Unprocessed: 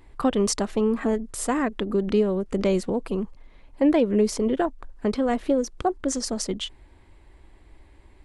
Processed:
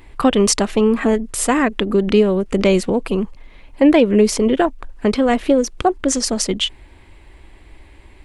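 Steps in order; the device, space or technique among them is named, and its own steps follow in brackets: presence and air boost (peaking EQ 2.6 kHz +6 dB 1 oct; treble shelf 9.2 kHz +4.5 dB); trim +7.5 dB

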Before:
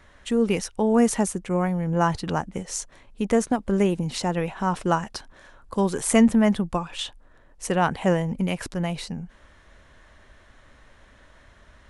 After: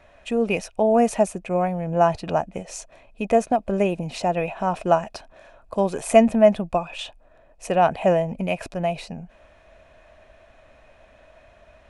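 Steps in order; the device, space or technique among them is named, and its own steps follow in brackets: inside a helmet (treble shelf 6 kHz -4.5 dB; small resonant body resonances 650/2500 Hz, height 16 dB, ringing for 25 ms); trim -3 dB

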